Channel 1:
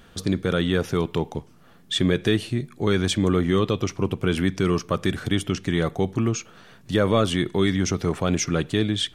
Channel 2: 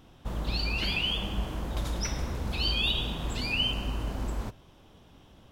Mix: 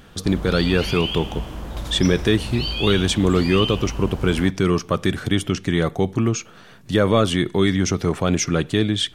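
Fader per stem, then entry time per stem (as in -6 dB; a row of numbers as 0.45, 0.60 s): +3.0, +2.0 dB; 0.00, 0.00 s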